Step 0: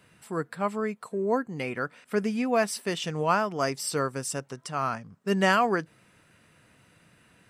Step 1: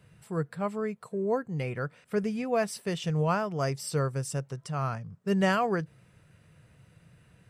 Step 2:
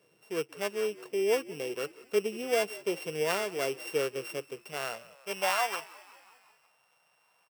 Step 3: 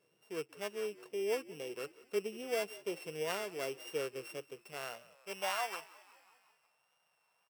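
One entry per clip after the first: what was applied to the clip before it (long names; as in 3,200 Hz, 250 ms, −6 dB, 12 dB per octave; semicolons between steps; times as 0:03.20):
drawn EQ curve 150 Hz 0 dB, 250 Hz −14 dB, 480 Hz −8 dB, 940 Hz −13 dB; level +7.5 dB
samples sorted by size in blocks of 16 samples; echo with shifted repeats 181 ms, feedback 63%, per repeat −59 Hz, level −20 dB; high-pass filter sweep 380 Hz → 850 Hz, 0:04.67–0:05.63; level −4 dB
tape wow and flutter 27 cents; level −7.5 dB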